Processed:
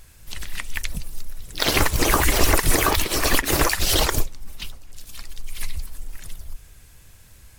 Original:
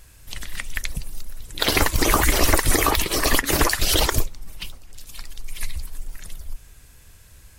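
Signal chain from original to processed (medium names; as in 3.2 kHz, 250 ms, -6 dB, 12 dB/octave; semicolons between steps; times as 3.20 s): harmony voices -12 st -16 dB, +5 st -7 dB; trim -1 dB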